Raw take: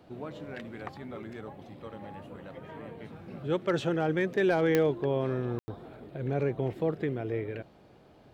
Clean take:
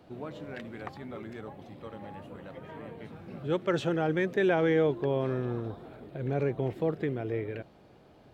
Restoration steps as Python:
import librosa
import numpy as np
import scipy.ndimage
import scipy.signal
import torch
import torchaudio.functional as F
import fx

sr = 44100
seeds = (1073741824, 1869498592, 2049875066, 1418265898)

y = fx.fix_declip(x, sr, threshold_db=-17.5)
y = fx.fix_declick_ar(y, sr, threshold=10.0)
y = fx.fix_ambience(y, sr, seeds[0], print_start_s=7.69, print_end_s=8.19, start_s=5.59, end_s=5.68)